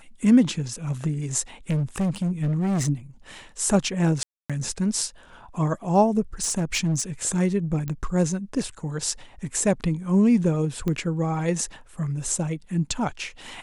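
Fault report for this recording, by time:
1.70–2.89 s: clipped -20.5 dBFS
4.23–4.50 s: dropout 266 ms
6.42–7.02 s: clipped -19 dBFS
7.88 s: pop -18 dBFS
10.88 s: pop -15 dBFS

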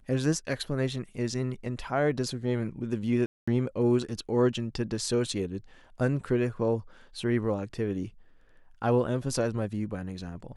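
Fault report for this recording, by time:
3.26–3.48 s: dropout 215 ms

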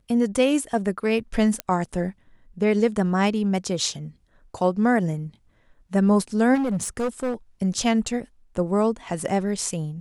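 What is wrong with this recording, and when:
1.60 s: pop -10 dBFS
6.54–7.34 s: clipped -21 dBFS

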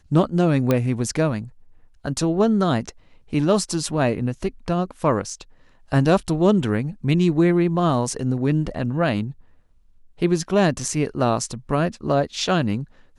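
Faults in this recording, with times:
0.71 s: pop -7 dBFS

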